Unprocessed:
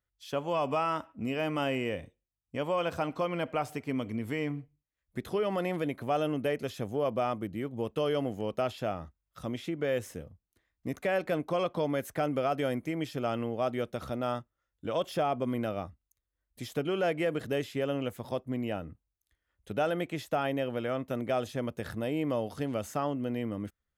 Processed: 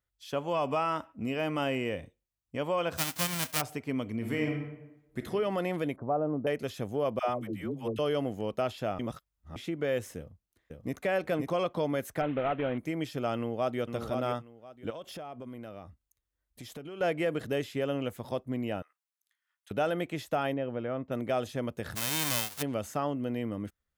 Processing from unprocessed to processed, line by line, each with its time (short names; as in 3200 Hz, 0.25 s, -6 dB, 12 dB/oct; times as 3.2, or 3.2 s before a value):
2.97–3.6 spectral whitening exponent 0.1
4.15–5.18 reverb throw, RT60 0.97 s, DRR 1.5 dB
5.96–6.47 LPF 1100 Hz 24 dB/oct
7.19–7.99 dispersion lows, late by 0.108 s, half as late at 500 Hz
8.99–9.56 reverse
10.17–10.97 echo throw 0.53 s, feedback 20%, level -3.5 dB
12.21–12.78 CVSD 16 kbps
13.35–13.8 echo throw 0.52 s, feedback 20%, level -5.5 dB
14.9–17.01 compressor 4:1, threshold -41 dBFS
18.82–19.71 HPF 1000 Hz 24 dB/oct
20.54–21.12 tape spacing loss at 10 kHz 30 dB
21.95–22.61 spectral whitening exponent 0.1